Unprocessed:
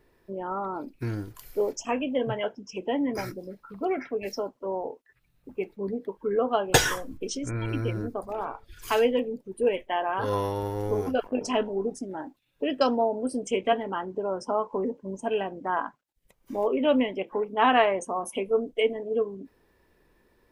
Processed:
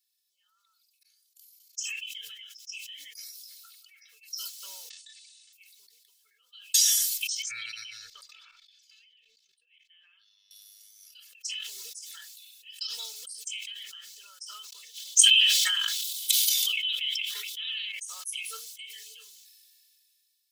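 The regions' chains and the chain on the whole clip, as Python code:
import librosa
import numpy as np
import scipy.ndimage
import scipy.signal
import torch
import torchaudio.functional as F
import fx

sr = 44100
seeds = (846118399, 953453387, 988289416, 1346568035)

y = fx.chain(x, sr, fx.cheby1_bandstop(low_hz=300.0, high_hz=740.0, order=4),
    fx.auto_swell(attack_ms=492.0),
    fx.level_steps(step_db=14), at=(0.96, 1.78))
y = fx.chain(y, sr, fx.lower_of_two(delay_ms=3.4),
    fx.steep_lowpass(hz=9100.0, slope=96), at=(4.9, 5.53))
y = fx.chain(y, sr, fx.level_steps(step_db=18),
    fx.air_absorb(metres=190.0), at=(7.42, 10.51))
y = fx.chain(y, sr, fx.highpass(hz=400.0, slope=12),
    fx.peak_eq(hz=3400.0, db=11.5, octaves=0.66),
    fx.env_flatten(amount_pct=100), at=(14.72, 17.92))
y = scipy.signal.sosfilt(scipy.signal.cheby2(4, 70, 890.0, 'highpass', fs=sr, output='sos'), y)
y = y + 0.78 * np.pad(y, (int(2.3 * sr / 1000.0), 0))[:len(y)]
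y = fx.sustainer(y, sr, db_per_s=21.0)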